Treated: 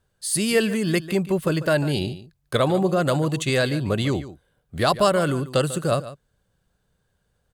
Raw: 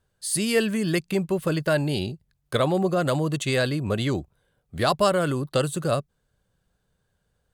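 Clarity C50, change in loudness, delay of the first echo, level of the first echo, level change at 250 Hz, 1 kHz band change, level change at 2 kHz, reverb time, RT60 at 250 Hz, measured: no reverb, +2.0 dB, 145 ms, -15.0 dB, +2.0 dB, +2.0 dB, +2.0 dB, no reverb, no reverb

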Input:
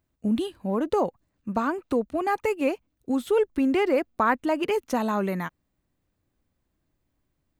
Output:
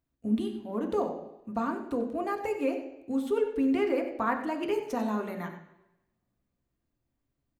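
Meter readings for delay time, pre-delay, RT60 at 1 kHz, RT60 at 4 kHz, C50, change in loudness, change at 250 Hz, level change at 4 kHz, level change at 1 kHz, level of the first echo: 93 ms, 3 ms, 0.85 s, 0.90 s, 7.5 dB, -5.0 dB, -3.5 dB, -7.5 dB, -6.5 dB, -12.5 dB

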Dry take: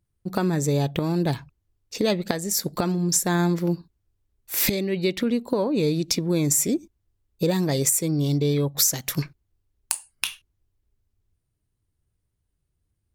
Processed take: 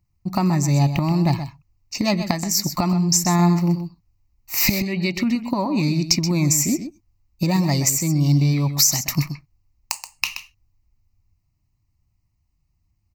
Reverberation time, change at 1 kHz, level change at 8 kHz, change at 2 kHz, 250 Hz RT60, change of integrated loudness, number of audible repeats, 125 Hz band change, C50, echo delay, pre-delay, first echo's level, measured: no reverb, +6.0 dB, +3.5 dB, +4.5 dB, no reverb, +3.5 dB, 1, +6.5 dB, no reverb, 127 ms, no reverb, -10.5 dB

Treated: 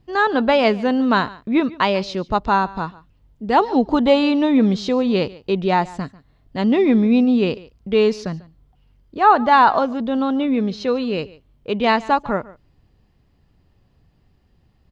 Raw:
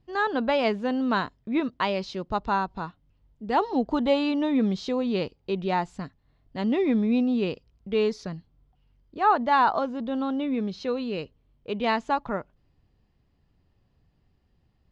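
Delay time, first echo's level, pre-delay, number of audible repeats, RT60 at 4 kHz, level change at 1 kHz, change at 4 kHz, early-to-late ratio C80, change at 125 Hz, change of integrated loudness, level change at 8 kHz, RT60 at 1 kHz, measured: 144 ms, -20.5 dB, no reverb, 1, no reverb, +8.0 dB, +8.0 dB, no reverb, +8.0 dB, +8.0 dB, no reading, no reverb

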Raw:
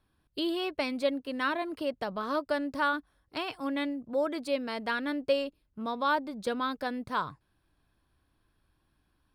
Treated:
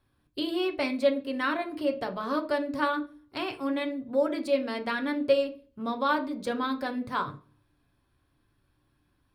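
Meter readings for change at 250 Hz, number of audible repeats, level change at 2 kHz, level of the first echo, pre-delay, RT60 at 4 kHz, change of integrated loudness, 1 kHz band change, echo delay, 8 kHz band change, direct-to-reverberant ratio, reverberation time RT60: +3.5 dB, no echo, +0.5 dB, no echo, 3 ms, 0.35 s, +2.5 dB, +1.0 dB, no echo, no reading, 3.0 dB, 0.40 s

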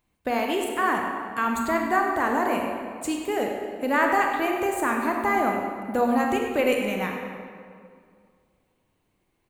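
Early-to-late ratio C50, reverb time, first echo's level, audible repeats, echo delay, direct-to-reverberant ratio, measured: 2.5 dB, 2.2 s, -11.5 dB, 1, 101 ms, 1.0 dB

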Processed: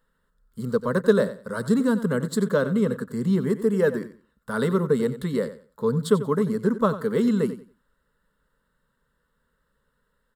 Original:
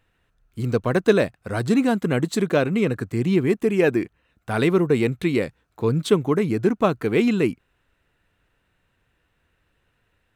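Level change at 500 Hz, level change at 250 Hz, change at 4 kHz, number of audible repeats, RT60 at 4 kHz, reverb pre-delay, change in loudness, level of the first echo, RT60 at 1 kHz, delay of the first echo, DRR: -2.0 dB, -2.0 dB, -6.5 dB, 2, no reverb, no reverb, -2.5 dB, -13.5 dB, no reverb, 91 ms, no reverb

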